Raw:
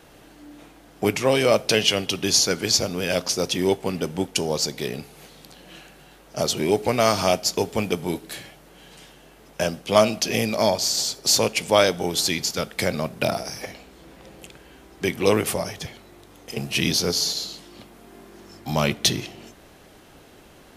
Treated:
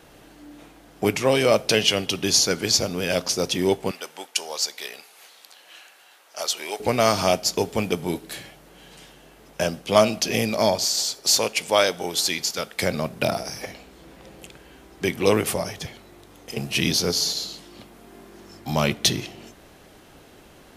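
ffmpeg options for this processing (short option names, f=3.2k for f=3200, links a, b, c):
-filter_complex "[0:a]asettb=1/sr,asplit=3[a][b][c];[a]atrim=end=3.914[d];[b]atrim=start=3.91:end=6.8,asetpts=PTS-STARTPTS,afade=t=in:d=0.004:c=qsin,afade=t=out:st=2.886:d=0.004:c=qsin,highpass=880[e];[c]atrim=start=6.796[f];[d][e]acrossfade=d=0.004:c1=hsin:c2=qsin[g];[g][f]acrossfade=d=0.004:c1=qsin:c2=hsin,asettb=1/sr,asplit=3[h][i][j];[h]atrim=end=10.854[k];[i]atrim=start=10.85:end=12.83,asetpts=PTS-STARTPTS,afade=t=in:d=0.004:c=qsin,afade=t=out:st=1.976:d=0.004:c=qsin,lowshelf=f=280:g=-11[l];[j]atrim=start=12.826[m];[k][l]acrossfade=d=0.004:c1=hsin:c2=qsin[n];[n][m]acrossfade=d=0.004:c1=qsin:c2=hsin"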